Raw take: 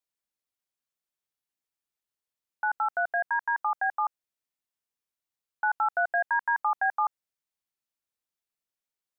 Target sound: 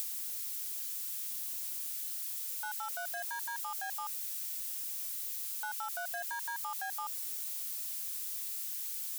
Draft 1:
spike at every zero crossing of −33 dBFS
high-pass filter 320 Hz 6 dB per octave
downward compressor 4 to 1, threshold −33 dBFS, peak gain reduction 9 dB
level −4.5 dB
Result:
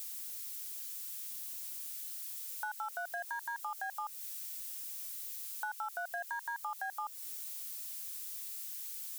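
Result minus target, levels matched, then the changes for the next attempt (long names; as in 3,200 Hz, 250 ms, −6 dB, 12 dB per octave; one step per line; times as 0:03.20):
spike at every zero crossing: distortion −11 dB
change: spike at every zero crossing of −21.5 dBFS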